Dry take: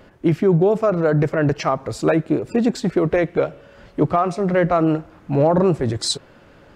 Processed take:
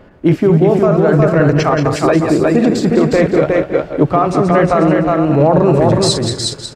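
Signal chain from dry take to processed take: regenerating reverse delay 0.1 s, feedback 52%, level -6.5 dB; on a send: echo 0.362 s -3.5 dB; on the sum: maximiser +6.5 dB; mismatched tape noise reduction decoder only; gain -1 dB

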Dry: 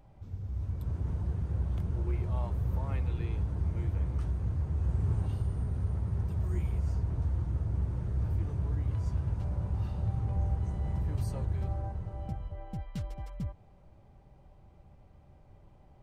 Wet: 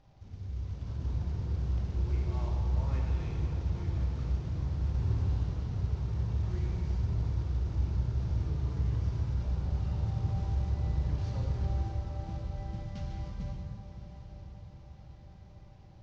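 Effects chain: CVSD 32 kbps; diffused feedback echo 1.097 s, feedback 57%, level -13 dB; reverb RT60 2.5 s, pre-delay 13 ms, DRR -1.5 dB; gain -4.5 dB

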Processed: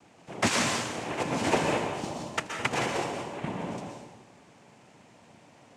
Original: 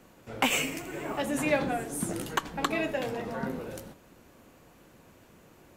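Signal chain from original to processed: 1.86–3.46 expander -28 dBFS; noise vocoder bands 4; plate-style reverb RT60 1 s, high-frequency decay 0.9×, pre-delay 0.11 s, DRR 2 dB

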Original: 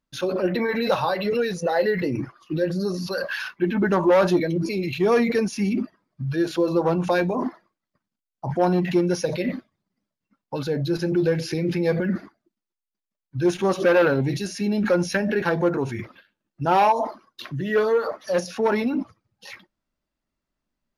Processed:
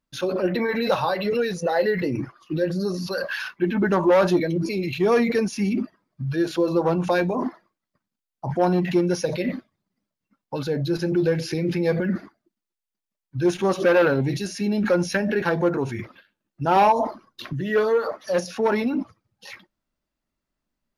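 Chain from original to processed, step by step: 16.76–17.53 low shelf 270 Hz +9.5 dB

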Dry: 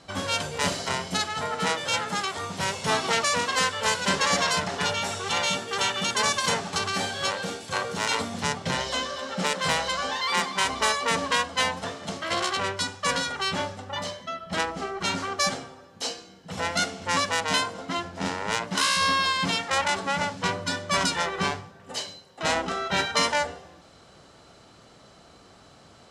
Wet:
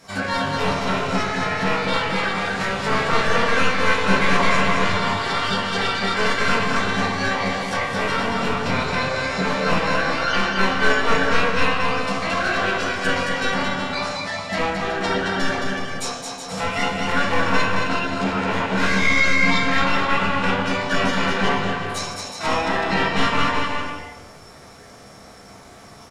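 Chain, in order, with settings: one-sided fold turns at -20 dBFS; shoebox room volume 180 m³, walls mixed, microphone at 1.6 m; treble ducked by the level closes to 2200 Hz, closed at -20 dBFS; on a send: bouncing-ball echo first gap 0.22 s, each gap 0.7×, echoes 5; on the sum: formant shift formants +5 st

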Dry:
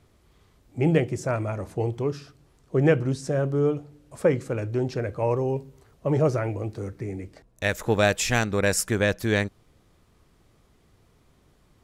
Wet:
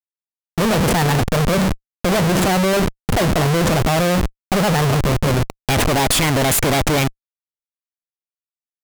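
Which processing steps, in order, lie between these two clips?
sample leveller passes 3; reverse; upward compressor, threshold -22 dBFS; reverse; Schmitt trigger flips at -25.5 dBFS; wide varispeed 1.34×; gain +2.5 dB

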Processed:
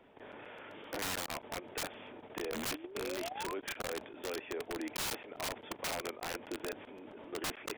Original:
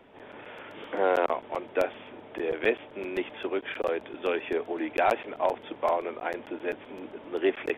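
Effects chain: painted sound rise, 2.54–3.55, 210–1100 Hz -37 dBFS; level quantiser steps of 12 dB; wrapped overs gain 29 dB; gain -2 dB

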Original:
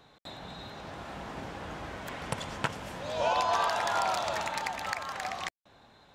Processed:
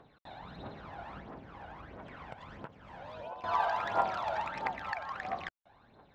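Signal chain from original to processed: tape spacing loss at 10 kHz 35 dB; phaser 1.5 Hz, delay 1.4 ms, feedback 61%; 1.18–3.44 compressor 6:1, threshold -41 dBFS, peak gain reduction 18.5 dB; low shelf 250 Hz -8.5 dB

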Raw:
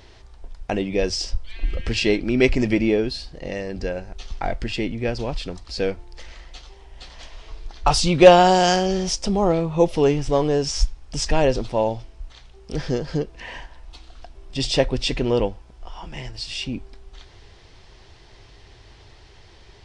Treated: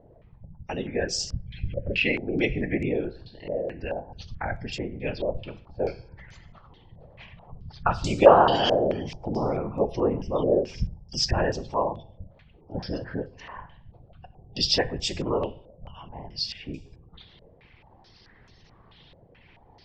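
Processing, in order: spectral gate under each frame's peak -30 dB strong; whisperiser; two-slope reverb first 0.61 s, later 1.7 s, from -27 dB, DRR 12 dB; stepped low-pass 4.6 Hz 580–7200 Hz; gain -8 dB

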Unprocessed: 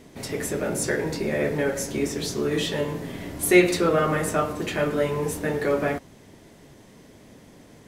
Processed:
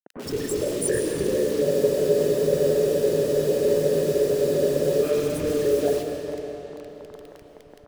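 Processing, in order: formant sharpening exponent 3; notches 50/100/150 Hz; in parallel at -1 dB: compressor 5:1, threshold -39 dBFS, peak gain reduction 23.5 dB; on the sum: bit-crush 6-bit; three bands offset in time mids, highs, lows 40/100 ms, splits 200/1700 Hz; on a send at -3 dB: reverb RT60 4.1 s, pre-delay 75 ms; on the sum: spectral freeze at 1.66, 3.37 s

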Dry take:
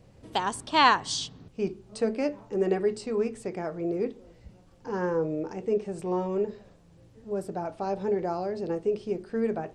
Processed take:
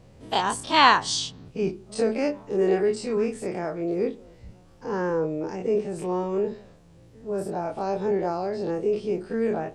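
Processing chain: spectral dilation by 60 ms

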